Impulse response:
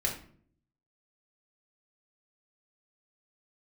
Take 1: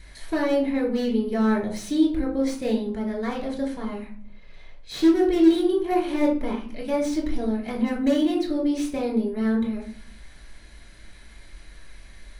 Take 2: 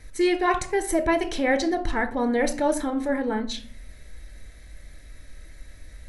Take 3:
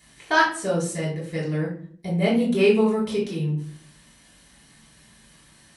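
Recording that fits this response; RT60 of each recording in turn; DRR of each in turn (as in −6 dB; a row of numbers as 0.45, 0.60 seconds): 1; 0.55, 0.55, 0.55 seconds; −1.5, 7.5, −5.5 decibels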